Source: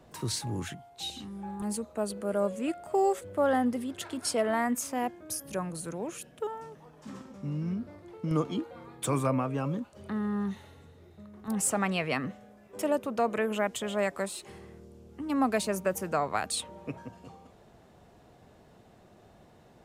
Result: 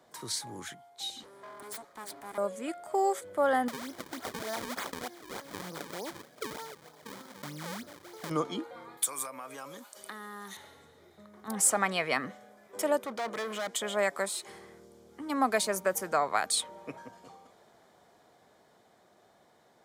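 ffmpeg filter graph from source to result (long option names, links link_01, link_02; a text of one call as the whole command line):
ffmpeg -i in.wav -filter_complex "[0:a]asettb=1/sr,asplit=3[link_01][link_02][link_03];[link_01]atrim=end=1.234[link_04];[link_02]atrim=start=1.23:end=2.38,asetpts=PTS-STARTPTS,afade=type=in:duration=0.004:curve=qsin,afade=type=out:start_time=1.146:duration=0.004:curve=qsin,acrossover=split=150|3000[link_05][link_06][link_07];[link_06]acompressor=threshold=-34dB:ratio=3:attack=3.2:release=140:knee=2.83:detection=peak[link_08];[link_05][link_08][link_07]amix=inputs=3:normalize=0,asubboost=boost=10:cutoff=110,aeval=exprs='abs(val(0))':channel_layout=same[link_09];[link_03]atrim=start=2.376[link_10];[link_04][link_09]acrossfade=duration=0.004:curve1=hsin:curve2=qsin[link_11];[link_11][link_10]acrossfade=duration=0.004:curve1=qsin:curve2=hsin,asettb=1/sr,asplit=3[link_12][link_13][link_14];[link_12]atrim=end=3.684[link_15];[link_13]atrim=start=3.68:end=8.3,asetpts=PTS-STARTPTS,afade=type=in:duration=0.004:curve=qsin,afade=type=out:start_time=4.616:duration=0.004:curve=qsin,acompressor=threshold=-33dB:ratio=4:attack=3.2:release=140:knee=1:detection=peak,acrusher=samples=37:mix=1:aa=0.000001:lfo=1:lforange=59.2:lforate=3.3[link_16];[link_14]atrim=start=8.296[link_17];[link_15][link_16]acrossfade=duration=0.004:curve1=hsin:curve2=qsin[link_18];[link_18][link_17]acrossfade=duration=0.004:curve1=qsin:curve2=hsin,asettb=1/sr,asplit=3[link_19][link_20][link_21];[link_19]atrim=end=8.974[link_22];[link_20]atrim=start=8.97:end=10.57,asetpts=PTS-STARTPTS,afade=type=in:duration=0.004:curve=qsin,afade=type=out:start_time=1.596:duration=0.004:curve=qsin,highpass=frequency=610:poles=1,acompressor=threshold=-39dB:ratio=16:attack=3.2:release=140:knee=1:detection=peak,aemphasis=mode=production:type=75kf[link_23];[link_21]atrim=start=10.566[link_24];[link_22][link_23]acrossfade=duration=0.004:curve1=hsin:curve2=qsin[link_25];[link_25][link_24]acrossfade=duration=0.004:curve1=qsin:curve2=hsin,asettb=1/sr,asplit=3[link_26][link_27][link_28];[link_26]atrim=end=13.044[link_29];[link_27]atrim=start=13.04:end=13.75,asetpts=PTS-STARTPTS,afade=type=in:duration=0.004:curve=qsin,afade=type=out:start_time=0.706:duration=0.004:curve=qsin,highshelf=frequency=8600:gain=-8,volume=32.5dB,asoftclip=hard,volume=-32.5dB[link_30];[link_28]atrim=start=13.746[link_31];[link_29][link_30]acrossfade=duration=0.004:curve1=hsin:curve2=qsin[link_32];[link_32][link_31]acrossfade=duration=0.004:curve1=qsin:curve2=hsin,highpass=frequency=720:poles=1,bandreject=frequency=2700:width=5.5,dynaudnorm=framelen=340:gausssize=17:maxgain=4.5dB" out.wav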